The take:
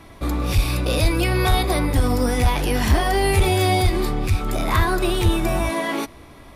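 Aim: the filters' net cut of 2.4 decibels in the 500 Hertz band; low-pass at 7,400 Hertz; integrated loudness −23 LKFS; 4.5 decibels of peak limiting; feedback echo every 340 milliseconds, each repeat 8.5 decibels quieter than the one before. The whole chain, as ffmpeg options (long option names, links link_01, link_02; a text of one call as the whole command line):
ffmpeg -i in.wav -af "lowpass=7400,equalizer=frequency=500:width_type=o:gain=-3.5,alimiter=limit=-13.5dB:level=0:latency=1,aecho=1:1:340|680|1020|1360:0.376|0.143|0.0543|0.0206,volume=-0.5dB" out.wav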